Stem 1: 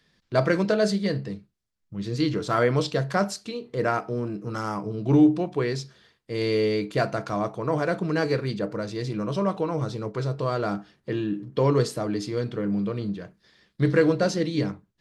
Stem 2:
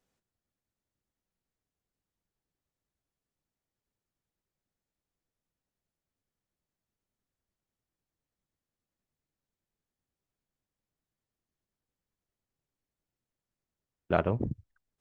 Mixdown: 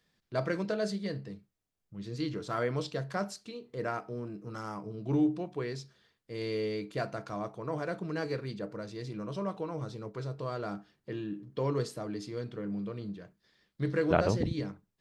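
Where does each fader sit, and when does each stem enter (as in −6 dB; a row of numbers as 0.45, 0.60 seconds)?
−10.0, 0.0 decibels; 0.00, 0.00 seconds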